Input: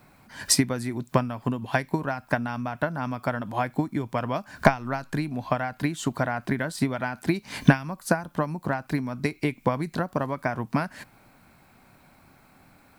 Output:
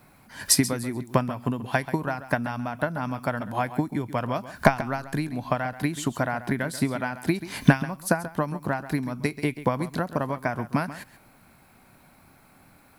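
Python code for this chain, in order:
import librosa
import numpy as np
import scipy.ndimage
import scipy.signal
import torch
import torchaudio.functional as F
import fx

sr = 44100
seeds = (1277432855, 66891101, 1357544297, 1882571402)

p1 = fx.peak_eq(x, sr, hz=11000.0, db=8.5, octaves=0.31)
y = p1 + fx.echo_single(p1, sr, ms=135, db=-14.0, dry=0)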